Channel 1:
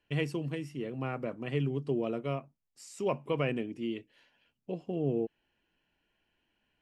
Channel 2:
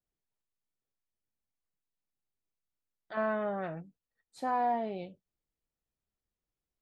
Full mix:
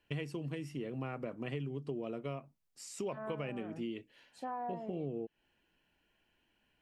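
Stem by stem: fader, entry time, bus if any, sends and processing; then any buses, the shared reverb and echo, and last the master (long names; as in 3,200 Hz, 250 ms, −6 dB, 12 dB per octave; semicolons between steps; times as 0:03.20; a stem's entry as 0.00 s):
+1.5 dB, 0.00 s, no send, no processing
−5.5 dB, 0.00 s, no send, treble cut that deepens with the level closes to 1,700 Hz, closed at −30.5 dBFS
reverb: not used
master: downward compressor, threshold −36 dBFS, peak gain reduction 12 dB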